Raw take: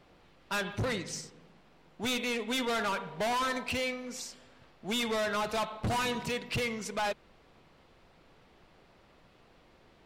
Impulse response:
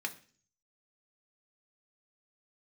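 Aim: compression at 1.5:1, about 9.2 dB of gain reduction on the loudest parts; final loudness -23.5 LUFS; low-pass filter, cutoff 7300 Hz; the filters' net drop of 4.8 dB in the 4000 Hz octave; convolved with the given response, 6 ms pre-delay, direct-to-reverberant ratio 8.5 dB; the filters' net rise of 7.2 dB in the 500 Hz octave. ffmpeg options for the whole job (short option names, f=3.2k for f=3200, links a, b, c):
-filter_complex "[0:a]lowpass=7.3k,equalizer=f=500:t=o:g=8.5,equalizer=f=4k:t=o:g=-6,acompressor=threshold=-50dB:ratio=1.5,asplit=2[a][b];[1:a]atrim=start_sample=2205,adelay=6[c];[b][c]afir=irnorm=-1:irlink=0,volume=-11dB[d];[a][d]amix=inputs=2:normalize=0,volume=14.5dB"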